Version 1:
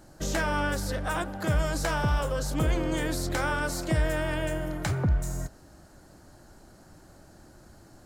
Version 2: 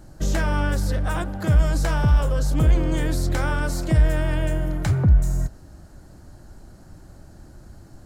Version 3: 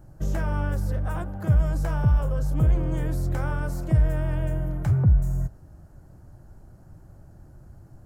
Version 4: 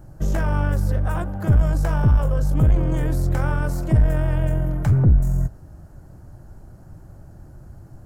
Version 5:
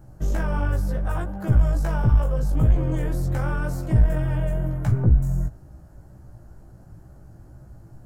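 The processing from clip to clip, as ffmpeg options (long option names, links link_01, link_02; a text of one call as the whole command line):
ffmpeg -i in.wav -filter_complex "[0:a]lowshelf=frequency=180:gain=12,asplit=2[link_01][link_02];[link_02]acontrast=83,volume=-2.5dB[link_03];[link_01][link_03]amix=inputs=2:normalize=0,volume=-8dB" out.wav
ffmpeg -i in.wav -af "equalizer=frequency=125:width_type=o:width=1:gain=6,equalizer=frequency=250:width_type=o:width=1:gain=-4,equalizer=frequency=2000:width_type=o:width=1:gain=-4,equalizer=frequency=4000:width_type=o:width=1:gain=-11,equalizer=frequency=8000:width_type=o:width=1:gain=-6,volume=-4.5dB" out.wav
ffmpeg -i in.wav -af "aeval=exprs='(tanh(5.62*val(0)+0.35)-tanh(0.35))/5.62':channel_layout=same,volume=6.5dB" out.wav
ffmpeg -i in.wav -af "flanger=delay=15:depth=3:speed=2.1" out.wav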